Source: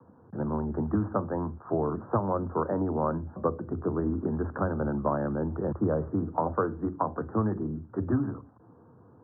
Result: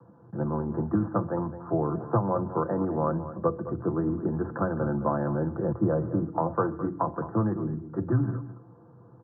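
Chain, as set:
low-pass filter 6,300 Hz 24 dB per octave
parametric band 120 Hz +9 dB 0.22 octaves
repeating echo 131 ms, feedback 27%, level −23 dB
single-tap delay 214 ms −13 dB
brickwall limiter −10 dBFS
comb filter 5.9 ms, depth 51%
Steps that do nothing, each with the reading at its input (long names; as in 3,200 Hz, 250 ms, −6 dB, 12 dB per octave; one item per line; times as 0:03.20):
low-pass filter 6,300 Hz: nothing at its input above 1,600 Hz
brickwall limiter −10 dBFS: peak of its input −12.5 dBFS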